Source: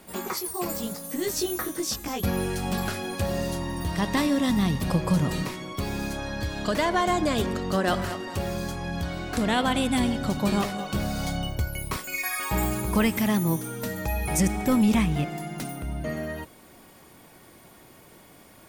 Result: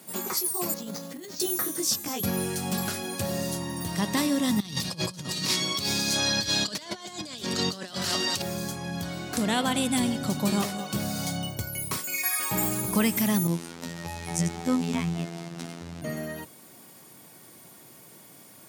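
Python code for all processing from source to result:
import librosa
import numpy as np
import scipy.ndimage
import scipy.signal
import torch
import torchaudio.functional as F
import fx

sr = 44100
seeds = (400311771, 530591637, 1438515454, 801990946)

y = fx.chain(x, sr, fx.highpass(hz=93.0, slope=12),
    fx.over_compress(threshold_db=-35.0, ratio=-1.0),
    fx.resample_bad(factor=4, down='filtered', up='hold'), at=(0.74, 1.4))
y = fx.chain(y, sr, fx.peak_eq(hz=4500.0, db=14.0, octaves=1.7),
    fx.over_compress(threshold_db=-29.0, ratio=-0.5), at=(4.6, 8.42))
y = fx.chain(y, sr, fx.delta_hold(step_db=-33.0),
    fx.robotise(hz=84.7),
    fx.air_absorb(metres=62.0), at=(13.47, 16.02))
y = scipy.signal.sosfilt(scipy.signal.butter(4, 110.0, 'highpass', fs=sr, output='sos'), y)
y = fx.bass_treble(y, sr, bass_db=3, treble_db=9)
y = y * 10.0 ** (-3.0 / 20.0)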